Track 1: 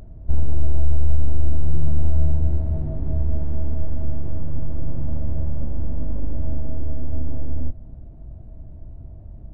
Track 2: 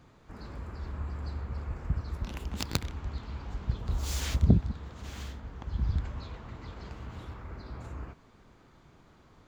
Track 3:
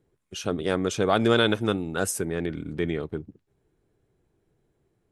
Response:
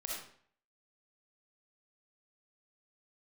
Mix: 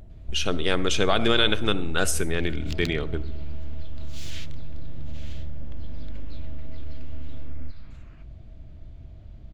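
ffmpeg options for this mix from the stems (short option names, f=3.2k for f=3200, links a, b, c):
-filter_complex "[0:a]acompressor=threshold=-20dB:ratio=6,volume=-5dB,asplit=2[a][b];[b]volume=-22.5dB[c];[1:a]highpass=1.3k,adelay=100,volume=-12dB[d];[2:a]volume=-2dB,asplit=2[e][f];[f]volume=-10.5dB[g];[d][e]amix=inputs=2:normalize=0,equalizer=f=3k:t=o:w=1.9:g=12.5,alimiter=limit=-10dB:level=0:latency=1:release=242,volume=0dB[h];[3:a]atrim=start_sample=2205[i];[c][g]amix=inputs=2:normalize=0[j];[j][i]afir=irnorm=-1:irlink=0[k];[a][h][k]amix=inputs=3:normalize=0"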